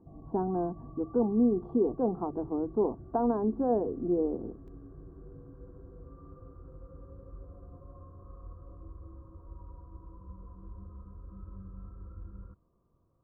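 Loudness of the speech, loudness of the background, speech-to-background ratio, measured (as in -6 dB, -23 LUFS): -30.0 LUFS, -49.5 LUFS, 19.5 dB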